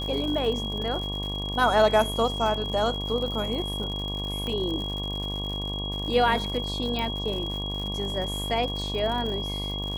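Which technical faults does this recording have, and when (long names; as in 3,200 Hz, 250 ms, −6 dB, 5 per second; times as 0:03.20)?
mains buzz 50 Hz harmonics 23 −33 dBFS
surface crackle 120 per second −33 dBFS
whistle 3,300 Hz −32 dBFS
0:04.47: click −20 dBFS
0:06.99: click −17 dBFS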